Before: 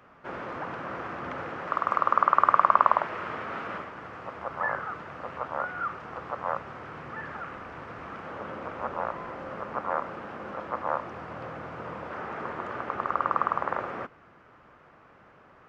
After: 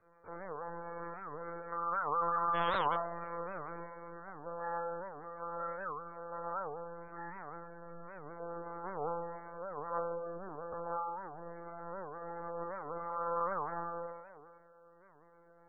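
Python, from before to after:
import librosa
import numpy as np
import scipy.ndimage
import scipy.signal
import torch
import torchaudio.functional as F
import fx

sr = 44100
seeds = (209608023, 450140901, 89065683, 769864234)

y = fx.comb_fb(x, sr, f0_hz=110.0, decay_s=0.81, harmonics='all', damping=0.0, mix_pct=100)
y = y + 10.0 ** (-19.0 / 20.0) * np.pad(y, (int(575 * sr / 1000.0), 0))[:len(y)]
y = (np.mod(10.0 ** (28.5 / 20.0) * y + 1.0, 2.0) - 1.0) / 10.0 ** (28.5 / 20.0)
y = scipy.signal.sosfilt(scipy.signal.butter(2, 1500.0, 'lowpass', fs=sr, output='sos'), y)
y = fx.peak_eq(y, sr, hz=480.0, db=8.0, octaves=0.22)
y = fx.lpc_monotone(y, sr, seeds[0], pitch_hz=170.0, order=16)
y = fx.echo_banded(y, sr, ms=61, feedback_pct=82, hz=540.0, wet_db=-9.5)
y = fx.spec_gate(y, sr, threshold_db=-25, keep='strong')
y = fx.record_warp(y, sr, rpm=78.0, depth_cents=250.0)
y = F.gain(torch.from_numpy(y), 6.5).numpy()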